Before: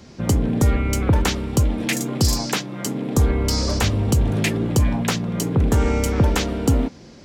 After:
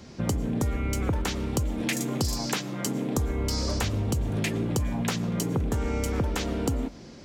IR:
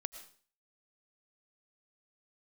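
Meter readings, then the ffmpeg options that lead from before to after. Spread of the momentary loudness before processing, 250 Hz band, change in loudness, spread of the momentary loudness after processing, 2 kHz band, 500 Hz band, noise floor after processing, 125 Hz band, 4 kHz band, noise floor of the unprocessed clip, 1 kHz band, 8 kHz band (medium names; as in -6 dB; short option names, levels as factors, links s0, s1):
4 LU, -7.0 dB, -7.5 dB, 2 LU, -7.0 dB, -7.0 dB, -45 dBFS, -8.5 dB, -7.0 dB, -43 dBFS, -7.0 dB, -6.5 dB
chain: -filter_complex "[0:a]acompressor=threshold=0.0794:ratio=6,asplit=2[s0][s1];[1:a]atrim=start_sample=2205[s2];[s1][s2]afir=irnorm=-1:irlink=0,volume=0.631[s3];[s0][s3]amix=inputs=2:normalize=0,volume=0.531"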